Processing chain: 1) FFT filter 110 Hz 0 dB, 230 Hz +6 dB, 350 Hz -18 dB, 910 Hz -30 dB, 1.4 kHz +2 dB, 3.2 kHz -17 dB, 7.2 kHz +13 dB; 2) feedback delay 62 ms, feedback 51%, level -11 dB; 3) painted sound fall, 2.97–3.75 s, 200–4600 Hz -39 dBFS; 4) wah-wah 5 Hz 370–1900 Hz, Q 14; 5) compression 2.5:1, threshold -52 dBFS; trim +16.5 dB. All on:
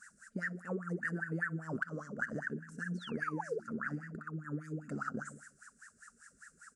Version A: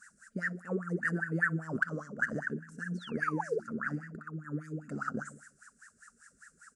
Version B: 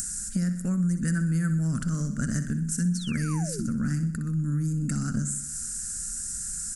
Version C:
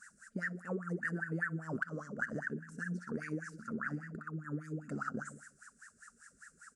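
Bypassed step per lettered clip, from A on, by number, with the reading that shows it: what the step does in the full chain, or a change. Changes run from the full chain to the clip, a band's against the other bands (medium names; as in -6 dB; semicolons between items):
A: 5, crest factor change +1.5 dB; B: 4, 8 kHz band +22.0 dB; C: 3, 500 Hz band -1.5 dB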